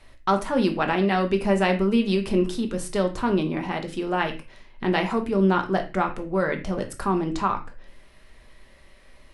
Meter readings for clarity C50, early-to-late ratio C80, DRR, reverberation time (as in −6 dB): 12.0 dB, 17.5 dB, 4.0 dB, non-exponential decay